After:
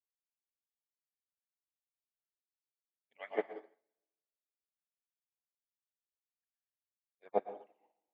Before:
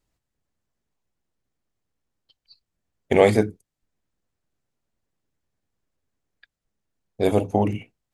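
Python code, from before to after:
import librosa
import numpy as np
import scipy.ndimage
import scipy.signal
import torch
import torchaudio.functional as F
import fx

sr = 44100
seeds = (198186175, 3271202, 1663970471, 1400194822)

p1 = fx.hpss_only(x, sr, part='percussive')
p2 = fx.high_shelf(p1, sr, hz=2600.0, db=-9.5)
p3 = p2 + fx.echo_split(p2, sr, split_hz=500.0, low_ms=154, high_ms=117, feedback_pct=52, wet_db=-11.5, dry=0)
p4 = fx.wah_lfo(p3, sr, hz=2.0, low_hz=770.0, high_hz=3900.0, q=2.1)
p5 = fx.air_absorb(p4, sr, metres=67.0)
p6 = fx.rev_plate(p5, sr, seeds[0], rt60_s=1.0, hf_ratio=0.8, predelay_ms=100, drr_db=2.5)
p7 = fx.upward_expand(p6, sr, threshold_db=-49.0, expansion=2.5)
y = F.gain(torch.from_numpy(p7), -1.5).numpy()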